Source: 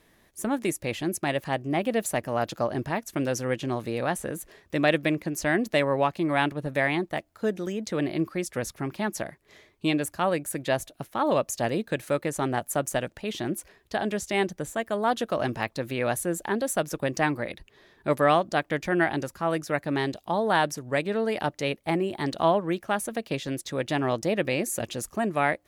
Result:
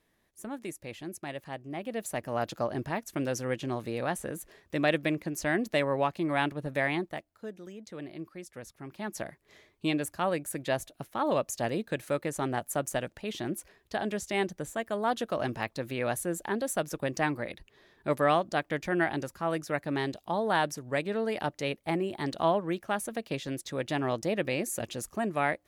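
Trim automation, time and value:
1.76 s -11.5 dB
2.36 s -4 dB
6.99 s -4 dB
7.46 s -14 dB
8.77 s -14 dB
9.24 s -4 dB

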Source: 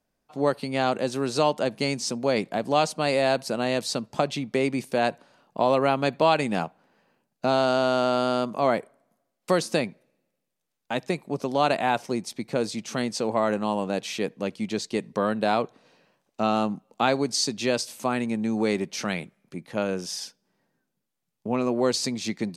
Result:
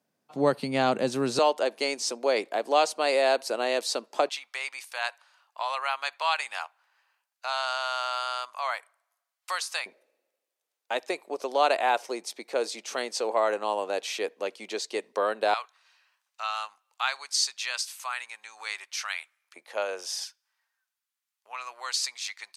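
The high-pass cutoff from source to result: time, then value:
high-pass 24 dB/octave
120 Hz
from 1.39 s 360 Hz
from 4.29 s 980 Hz
from 9.86 s 400 Hz
from 15.54 s 1.1 kHz
from 19.56 s 530 Hz
from 20.24 s 1.1 kHz

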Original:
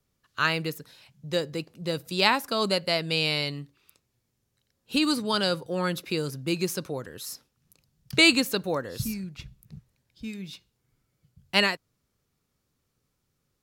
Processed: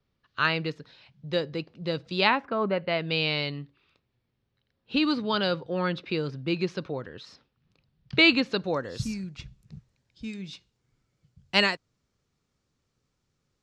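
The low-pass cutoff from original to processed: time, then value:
low-pass 24 dB/octave
2.17 s 4.5 kHz
2.60 s 1.8 kHz
3.14 s 4 kHz
8.42 s 4 kHz
8.98 s 7.4 kHz

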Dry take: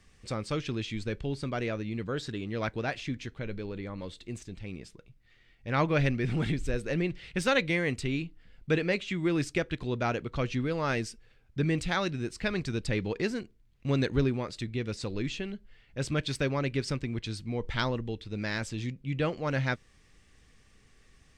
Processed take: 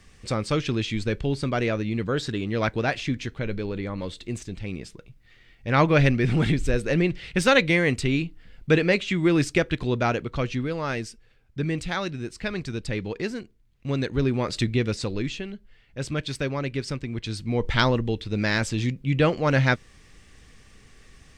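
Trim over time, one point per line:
9.84 s +7.5 dB
10.90 s +1 dB
14.15 s +1 dB
14.57 s +12 dB
15.47 s +1.5 dB
17.06 s +1.5 dB
17.62 s +9 dB

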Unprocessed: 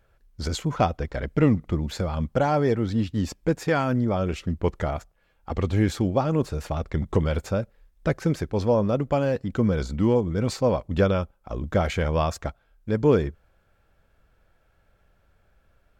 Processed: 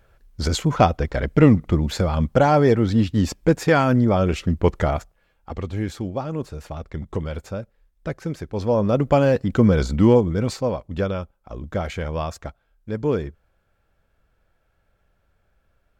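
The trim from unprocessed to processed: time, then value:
4.95 s +6 dB
5.67 s -4.5 dB
8.37 s -4.5 dB
9.07 s +6.5 dB
10.13 s +6.5 dB
10.78 s -3 dB

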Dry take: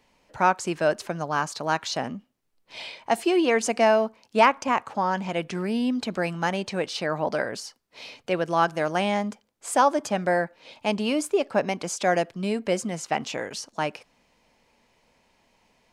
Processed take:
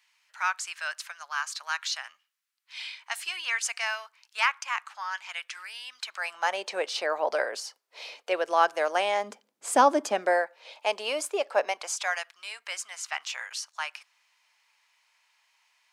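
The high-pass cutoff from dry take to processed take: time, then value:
high-pass 24 dB/octave
6.04 s 1.3 kHz
6.64 s 450 Hz
9.16 s 450 Hz
9.68 s 130 Hz
10.42 s 500 Hz
11.61 s 500 Hz
12.20 s 1.1 kHz

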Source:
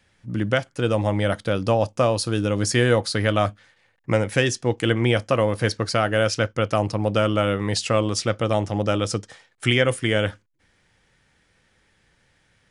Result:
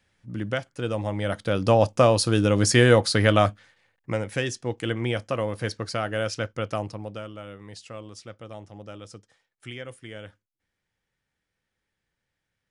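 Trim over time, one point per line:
1.17 s -6.5 dB
1.78 s +2 dB
3.36 s +2 dB
4.12 s -7 dB
6.75 s -7 dB
7.33 s -19 dB

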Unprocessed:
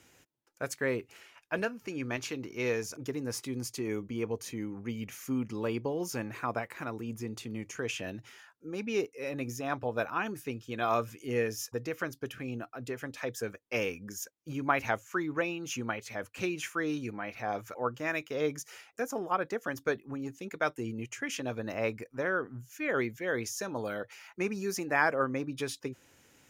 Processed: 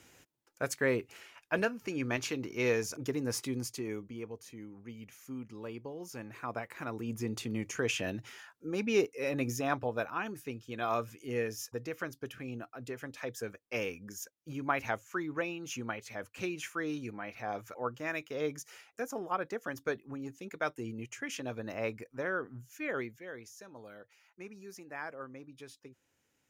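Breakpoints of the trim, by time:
3.47 s +1.5 dB
4.34 s -10 dB
6.02 s -10 dB
7.31 s +3 dB
9.62 s +3 dB
10.06 s -3.5 dB
22.85 s -3.5 dB
23.41 s -15 dB

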